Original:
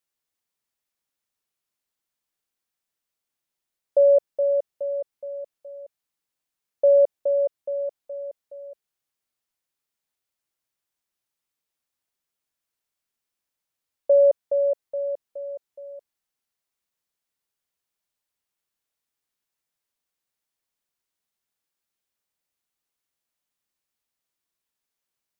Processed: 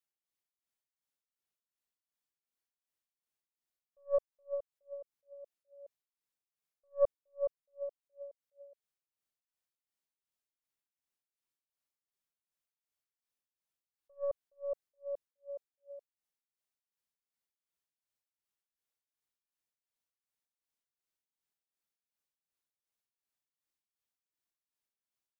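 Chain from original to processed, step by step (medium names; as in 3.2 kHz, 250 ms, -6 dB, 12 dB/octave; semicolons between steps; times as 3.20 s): tracing distortion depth 0.054 ms; tremolo 2.7 Hz, depth 71%; attacks held to a fixed rise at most 380 dB/s; trim -7.5 dB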